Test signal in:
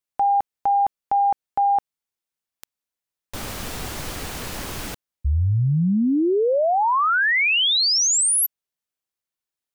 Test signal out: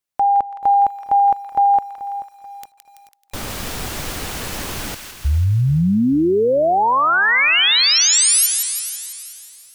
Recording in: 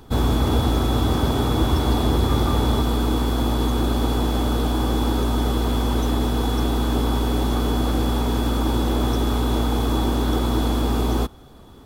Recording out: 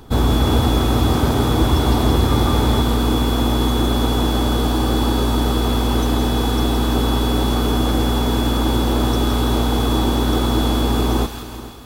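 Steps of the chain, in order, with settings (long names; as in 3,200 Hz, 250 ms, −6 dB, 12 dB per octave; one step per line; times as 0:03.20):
on a send: delay with a high-pass on its return 166 ms, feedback 60%, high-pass 1,400 Hz, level −6 dB
on the sum: feedback echo at a low word length 434 ms, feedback 35%, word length 8 bits, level −15 dB
level +3.5 dB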